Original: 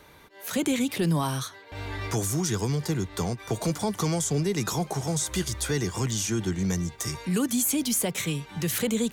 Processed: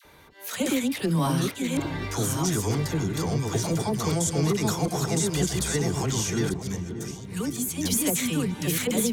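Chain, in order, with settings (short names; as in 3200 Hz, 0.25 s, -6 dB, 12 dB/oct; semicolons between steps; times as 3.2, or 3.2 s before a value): reverse delay 0.607 s, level -3 dB; 6.49–7.81 expander -19 dBFS; dispersion lows, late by 50 ms, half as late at 860 Hz; on a send: darkening echo 0.576 s, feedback 57%, low-pass 820 Hz, level -10 dB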